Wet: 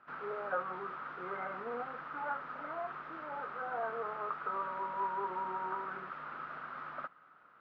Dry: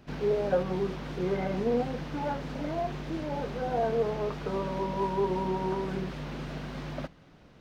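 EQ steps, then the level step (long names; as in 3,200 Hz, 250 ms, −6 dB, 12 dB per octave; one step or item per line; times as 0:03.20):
resonant band-pass 1,300 Hz, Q 7.7
high-frequency loss of the air 140 metres
+12.0 dB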